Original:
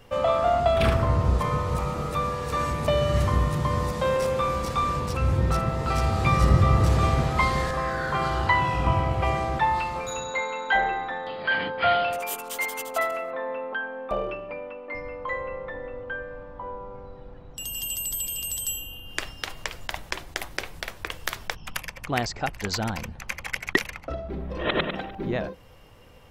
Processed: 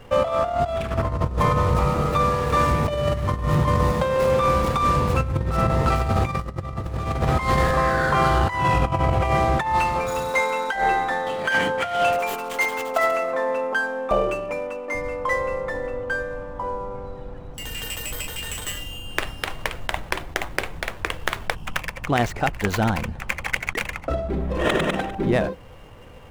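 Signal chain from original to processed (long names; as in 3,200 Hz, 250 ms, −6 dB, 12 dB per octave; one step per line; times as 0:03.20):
running median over 9 samples
compressor whose output falls as the input rises −25 dBFS, ratio −0.5
level +5.5 dB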